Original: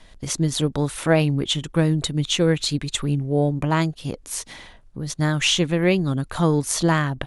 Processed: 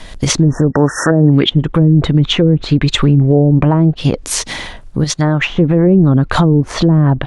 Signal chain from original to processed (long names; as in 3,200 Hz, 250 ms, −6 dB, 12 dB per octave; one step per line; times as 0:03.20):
0:00.71–0:01.51: meter weighting curve D
0:00.44–0:01.32: time-frequency box erased 1,900–5,300 Hz
treble cut that deepens with the level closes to 340 Hz, closed at −14 dBFS
0:05.04–0:05.50: low-shelf EQ 500 Hz −8.5 dB
boost into a limiter +17.5 dB
level −1 dB